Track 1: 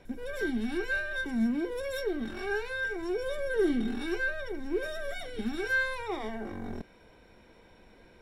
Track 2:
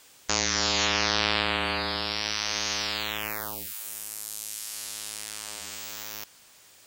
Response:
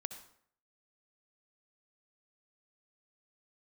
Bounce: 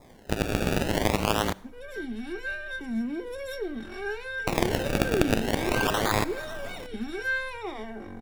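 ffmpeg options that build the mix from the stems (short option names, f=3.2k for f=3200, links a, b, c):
-filter_complex "[0:a]adelay=1550,volume=-11.5dB,asplit=2[a][b];[b]volume=-13dB[c];[1:a]highshelf=f=12k:g=10,acrossover=split=400|3000[d][e][f];[e]acompressor=threshold=-31dB:ratio=6[g];[d][g][f]amix=inputs=3:normalize=0,acrusher=samples=29:mix=1:aa=0.000001:lfo=1:lforange=29:lforate=0.44,volume=-2dB,asplit=3[h][i][j];[h]atrim=end=1.53,asetpts=PTS-STARTPTS,afade=t=out:st=1.526:d=0.004:c=hsin[k];[i]atrim=start=1.53:end=4.47,asetpts=PTS-STARTPTS,volume=0[l];[j]atrim=start=4.47,asetpts=PTS-STARTPTS,afade=t=in:d=0.004:c=hsin[m];[k][l][m]concat=n=3:v=0:a=1,asplit=2[n][o];[o]volume=-11.5dB[p];[2:a]atrim=start_sample=2205[q];[c][p]amix=inputs=2:normalize=0[r];[r][q]afir=irnorm=-1:irlink=0[s];[a][n][s]amix=inputs=3:normalize=0,adynamicequalizer=threshold=0.00178:dfrequency=2700:dqfactor=3.2:tfrequency=2700:tqfactor=3.2:attack=5:release=100:ratio=0.375:range=2.5:mode=boostabove:tftype=bell,dynaudnorm=f=290:g=11:m=9.5dB"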